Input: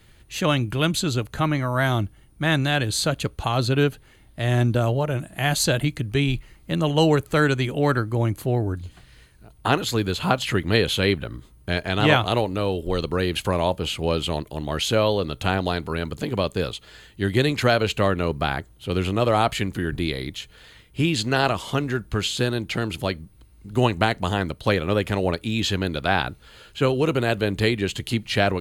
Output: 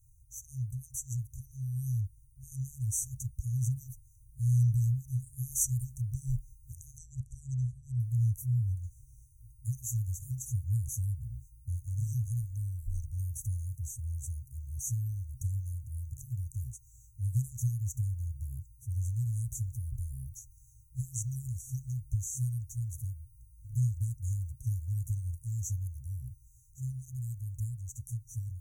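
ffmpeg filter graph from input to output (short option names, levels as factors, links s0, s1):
-filter_complex "[0:a]asettb=1/sr,asplit=3[s0][s1][s2];[s0]atrim=end=6.984[s3];[s1]atrim=start=6.98:end=8,asetpts=PTS-STARTPTS,afade=t=in:d=0.004:c=qsin,afade=t=out:st=1.016:d=0.004:c=qsin,lowpass=f=9700:w=0.5412,lowpass=f=9700:w=1.3066,highshelf=f=4300:g=-12[s4];[s2]atrim=start=7.996[s5];[s3][s4]acrossfade=d=0.004:c1=hsin:c2=qsin[s6];[s6][s5]acrossfade=d=0.004:c1=qsin:c2=hsin,afftfilt=real='re*(1-between(b*sr/4096,130,5700))':imag='im*(1-between(b*sr/4096,130,5700))':win_size=4096:overlap=0.75,equalizer=f=16000:t=o:w=0.22:g=10.5,dynaudnorm=f=160:g=31:m=1.58,volume=0.422"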